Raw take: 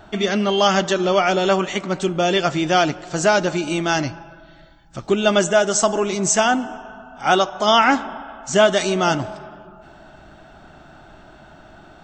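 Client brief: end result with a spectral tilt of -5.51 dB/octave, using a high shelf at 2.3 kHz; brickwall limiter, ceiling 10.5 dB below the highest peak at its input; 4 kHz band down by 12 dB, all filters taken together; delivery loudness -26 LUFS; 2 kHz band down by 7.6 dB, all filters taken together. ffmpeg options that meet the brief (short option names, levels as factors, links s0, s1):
-af "equalizer=f=2000:t=o:g=-6,highshelf=f=2300:g=-8.5,equalizer=f=4000:t=o:g=-6,alimiter=limit=0.15:level=0:latency=1"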